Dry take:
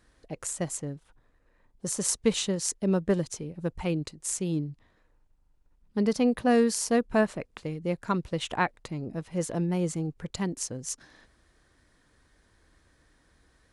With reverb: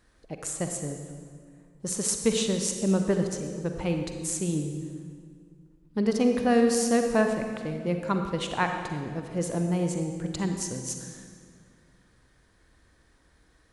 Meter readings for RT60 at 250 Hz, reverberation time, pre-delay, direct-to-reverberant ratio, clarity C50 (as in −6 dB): 2.6 s, 2.0 s, 39 ms, 4.5 dB, 5.0 dB